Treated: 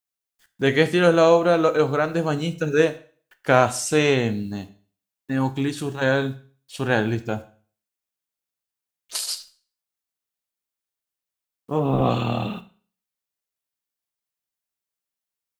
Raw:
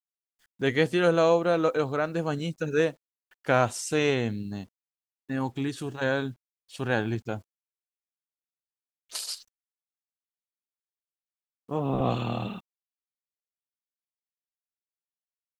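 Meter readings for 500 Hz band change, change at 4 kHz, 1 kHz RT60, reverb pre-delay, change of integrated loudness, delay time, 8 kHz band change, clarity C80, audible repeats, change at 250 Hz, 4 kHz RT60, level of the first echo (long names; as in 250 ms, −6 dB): +6.0 dB, +6.0 dB, 0.40 s, 15 ms, +6.0 dB, no echo audible, +7.0 dB, 20.0 dB, no echo audible, +6.0 dB, 0.45 s, no echo audible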